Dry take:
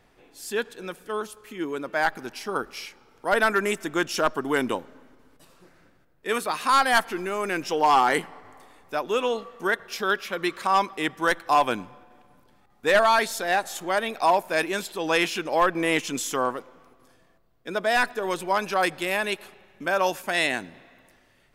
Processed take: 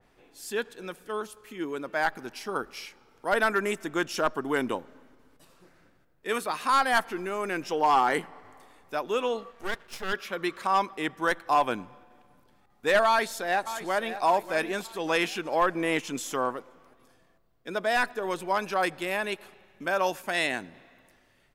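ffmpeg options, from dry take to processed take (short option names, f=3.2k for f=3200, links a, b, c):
-filter_complex "[0:a]asplit=3[a][b][c];[a]afade=t=out:st=9.51:d=0.02[d];[b]aeval=exprs='max(val(0),0)':c=same,afade=t=in:st=9.51:d=0.02,afade=t=out:st=10.12:d=0.02[e];[c]afade=t=in:st=10.12:d=0.02[f];[d][e][f]amix=inputs=3:normalize=0,asplit=2[g][h];[h]afade=t=in:st=13.07:d=0.01,afade=t=out:st=14.22:d=0.01,aecho=0:1:590|1180|1770|2360|2950:0.251189|0.113035|0.0508657|0.0228896|0.0103003[i];[g][i]amix=inputs=2:normalize=0,adynamicequalizer=threshold=0.0141:dfrequency=2300:dqfactor=0.7:tfrequency=2300:tqfactor=0.7:attack=5:release=100:ratio=0.375:range=2:mode=cutabove:tftype=highshelf,volume=-3dB"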